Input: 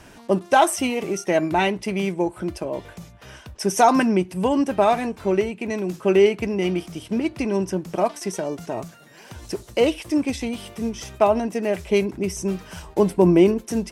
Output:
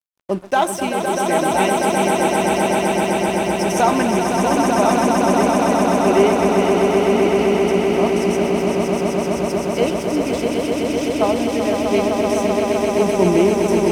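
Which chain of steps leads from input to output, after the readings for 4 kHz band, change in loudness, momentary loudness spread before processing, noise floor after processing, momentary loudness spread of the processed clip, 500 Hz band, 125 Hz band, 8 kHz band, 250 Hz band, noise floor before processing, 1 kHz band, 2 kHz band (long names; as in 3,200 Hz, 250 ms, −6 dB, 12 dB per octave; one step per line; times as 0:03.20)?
+6.0 dB, +4.5 dB, 13 LU, −24 dBFS, 5 LU, +5.5 dB, +4.0 dB, +6.0 dB, +4.5 dB, −48 dBFS, +5.5 dB, +5.5 dB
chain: echo that builds up and dies away 128 ms, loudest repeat 8, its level −5 dB
dead-zone distortion −37 dBFS
level −1 dB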